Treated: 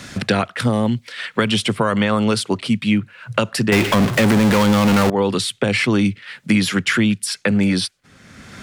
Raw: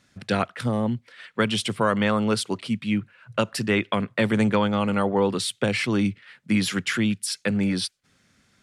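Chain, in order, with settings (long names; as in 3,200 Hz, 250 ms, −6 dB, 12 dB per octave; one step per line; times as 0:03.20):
0:03.72–0:05.10: power curve on the samples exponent 0.35
boost into a limiter +12.5 dB
multiband upward and downward compressor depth 70%
level −7 dB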